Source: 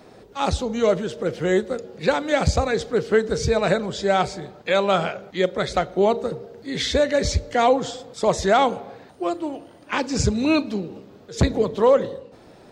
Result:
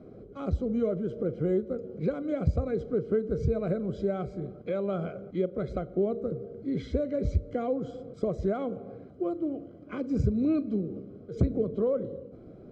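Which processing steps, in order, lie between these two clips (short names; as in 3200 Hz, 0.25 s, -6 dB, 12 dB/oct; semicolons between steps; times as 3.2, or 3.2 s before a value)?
compressor 2:1, threshold -29 dBFS, peak gain reduction 9.5 dB; running mean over 49 samples; gain +3 dB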